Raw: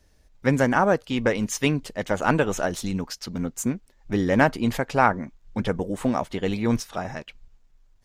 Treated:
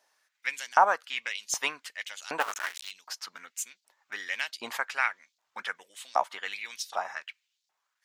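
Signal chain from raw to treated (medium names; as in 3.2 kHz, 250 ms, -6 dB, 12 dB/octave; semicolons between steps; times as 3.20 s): 2.40–2.91 s: cycle switcher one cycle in 2, muted; LFO high-pass saw up 1.3 Hz 750–4700 Hz; trim -3.5 dB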